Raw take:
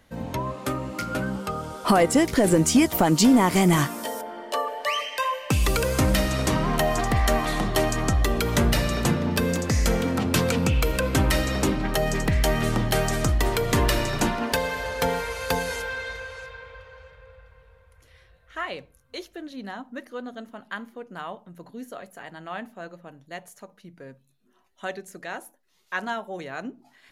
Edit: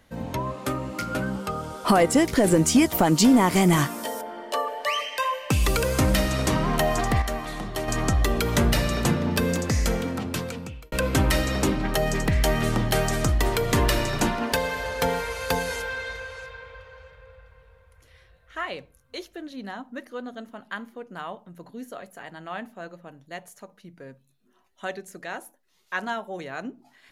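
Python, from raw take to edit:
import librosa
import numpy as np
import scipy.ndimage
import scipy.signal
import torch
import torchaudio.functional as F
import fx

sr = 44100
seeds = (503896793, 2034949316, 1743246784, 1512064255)

y = fx.edit(x, sr, fx.clip_gain(start_s=7.22, length_s=0.66, db=-7.5),
    fx.fade_out_span(start_s=9.62, length_s=1.3), tone=tone)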